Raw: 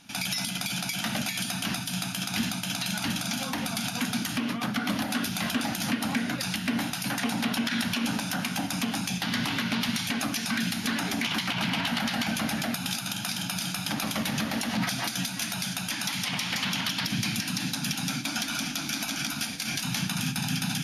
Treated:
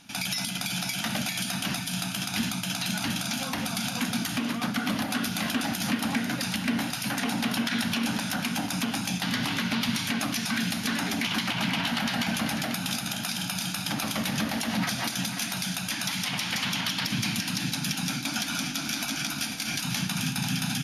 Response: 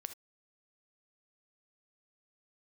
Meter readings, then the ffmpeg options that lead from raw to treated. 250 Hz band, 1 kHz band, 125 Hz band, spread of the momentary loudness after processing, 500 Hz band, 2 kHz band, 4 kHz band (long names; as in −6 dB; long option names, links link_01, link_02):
+0.5 dB, +0.5 dB, +0.5 dB, 2 LU, +0.5 dB, +0.5 dB, +0.5 dB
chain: -af "areverse,acompressor=mode=upward:threshold=-33dB:ratio=2.5,areverse,aecho=1:1:493:0.335"